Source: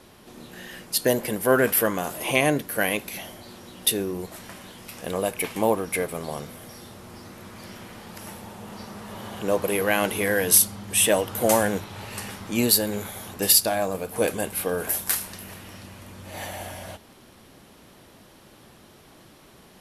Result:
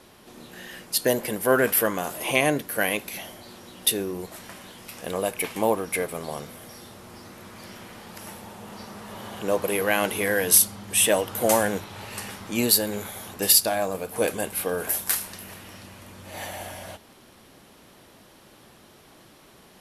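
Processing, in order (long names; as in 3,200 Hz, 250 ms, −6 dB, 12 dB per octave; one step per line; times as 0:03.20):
low-shelf EQ 240 Hz −4 dB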